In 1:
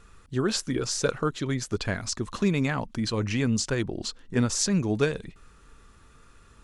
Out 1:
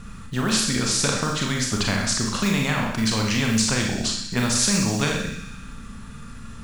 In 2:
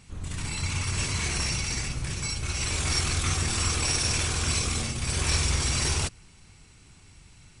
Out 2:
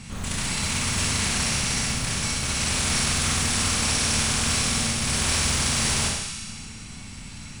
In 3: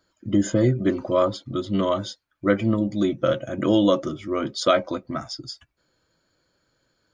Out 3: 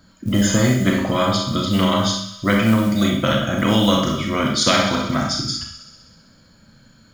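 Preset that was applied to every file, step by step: resonant low shelf 280 Hz +7.5 dB, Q 3; short-mantissa float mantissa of 6-bit; on a send: feedback echo behind a high-pass 64 ms, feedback 75%, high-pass 2 kHz, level -13 dB; on the sum: Schroeder reverb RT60 0.47 s, combs from 28 ms, DRR 1 dB; spectrum-flattening compressor 2:1; trim -5 dB

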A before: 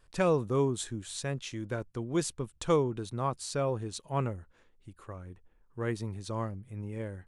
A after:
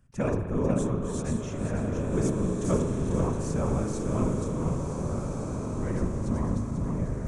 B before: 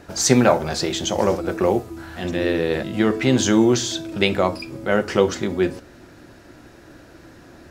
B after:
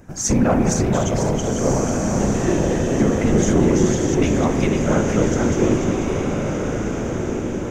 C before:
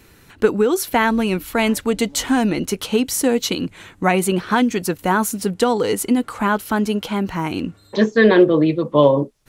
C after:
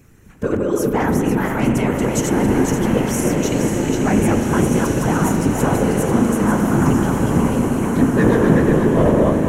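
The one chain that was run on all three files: backward echo that repeats 247 ms, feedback 58%, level -2 dB; tone controls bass +10 dB, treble -10 dB; saturation -4.5 dBFS; whisper effect; resonant high shelf 5.2 kHz +6.5 dB, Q 3; on a send: echo that smears into a reverb 1569 ms, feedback 43%, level -4 dB; on the sum: spring tank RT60 3.2 s, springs 38 ms, chirp 45 ms, DRR 5.5 dB; trim -5 dB

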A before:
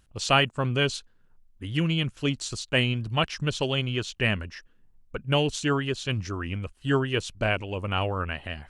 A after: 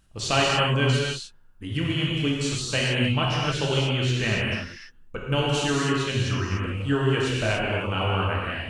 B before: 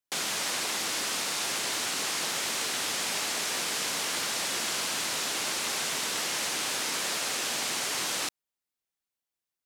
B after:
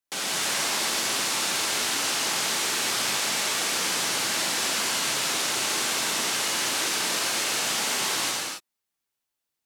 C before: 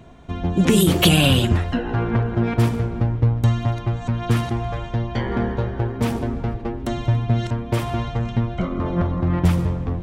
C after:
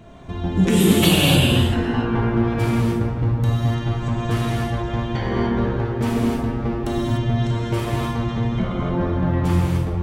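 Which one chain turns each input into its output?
in parallel at +0.5 dB: compression, threshold -28 dBFS; on the sum: short-mantissa float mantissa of 8-bit; gated-style reverb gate 320 ms flat, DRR -5 dB; trim -7 dB

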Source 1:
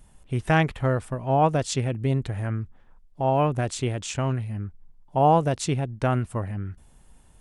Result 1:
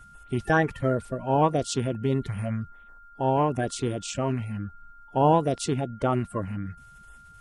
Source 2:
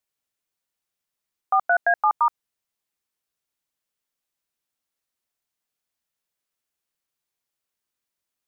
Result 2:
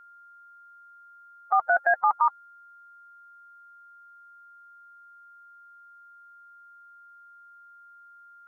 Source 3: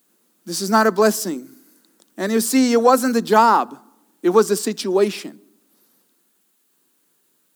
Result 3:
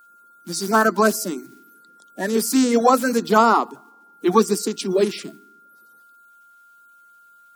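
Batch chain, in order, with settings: coarse spectral quantiser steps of 30 dB; whistle 1.4 kHz -48 dBFS; trim -1 dB

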